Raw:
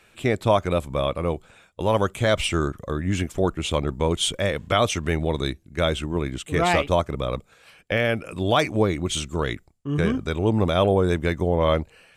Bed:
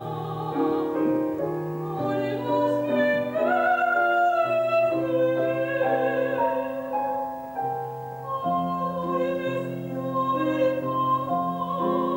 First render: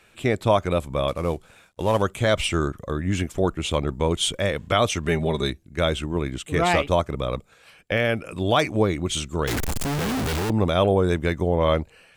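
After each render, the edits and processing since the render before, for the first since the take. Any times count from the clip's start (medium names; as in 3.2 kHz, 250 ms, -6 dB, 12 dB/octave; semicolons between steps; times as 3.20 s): 1.08–2.02 s: CVSD coder 64 kbps; 5.07–5.50 s: comb 5 ms; 9.47–10.50 s: one-bit comparator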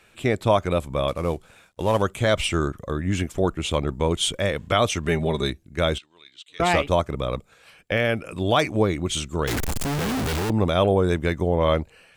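5.98–6.60 s: band-pass filter 3.9 kHz, Q 4.1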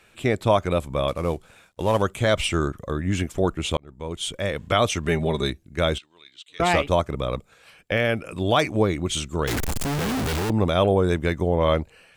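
3.77–4.70 s: fade in linear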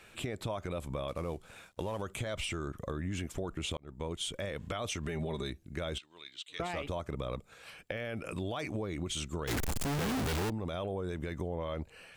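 peak limiter -19.5 dBFS, peak gain reduction 11.5 dB; compression 2.5:1, threshold -37 dBFS, peak gain reduction 9 dB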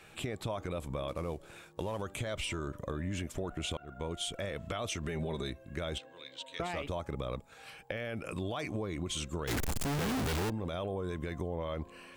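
add bed -32 dB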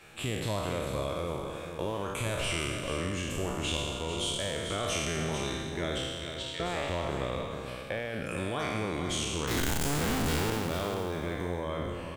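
spectral sustain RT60 1.85 s; on a send: delay 445 ms -8 dB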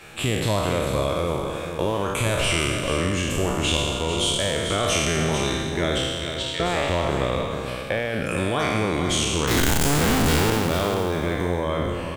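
trim +9.5 dB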